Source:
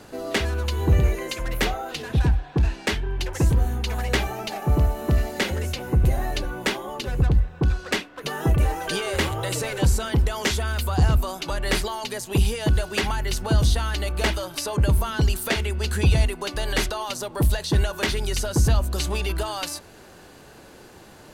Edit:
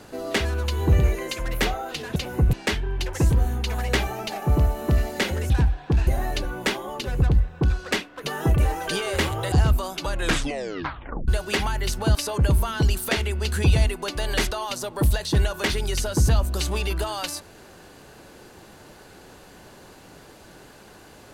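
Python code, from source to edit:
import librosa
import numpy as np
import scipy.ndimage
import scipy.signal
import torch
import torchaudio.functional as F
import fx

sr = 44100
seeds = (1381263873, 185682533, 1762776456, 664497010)

y = fx.edit(x, sr, fx.swap(start_s=2.16, length_s=0.57, other_s=5.7, other_length_s=0.37),
    fx.cut(start_s=9.52, length_s=1.44),
    fx.tape_stop(start_s=11.54, length_s=1.18),
    fx.cut(start_s=13.59, length_s=0.95), tone=tone)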